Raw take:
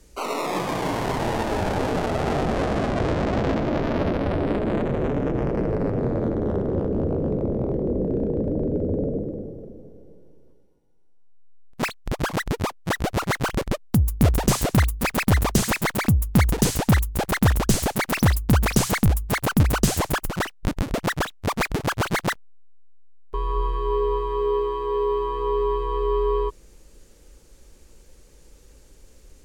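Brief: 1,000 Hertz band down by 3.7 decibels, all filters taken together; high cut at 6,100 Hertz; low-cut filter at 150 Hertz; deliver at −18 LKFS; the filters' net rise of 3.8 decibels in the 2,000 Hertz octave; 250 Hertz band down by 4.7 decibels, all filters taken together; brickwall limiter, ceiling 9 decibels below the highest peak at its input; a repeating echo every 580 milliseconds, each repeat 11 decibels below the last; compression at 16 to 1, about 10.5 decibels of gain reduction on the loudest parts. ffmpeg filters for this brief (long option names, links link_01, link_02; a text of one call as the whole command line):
ffmpeg -i in.wav -af "highpass=150,lowpass=6100,equalizer=frequency=250:width_type=o:gain=-5,equalizer=frequency=1000:width_type=o:gain=-6,equalizer=frequency=2000:width_type=o:gain=6.5,acompressor=threshold=-29dB:ratio=16,alimiter=limit=-20dB:level=0:latency=1,aecho=1:1:580|1160|1740:0.282|0.0789|0.0221,volume=16.5dB" out.wav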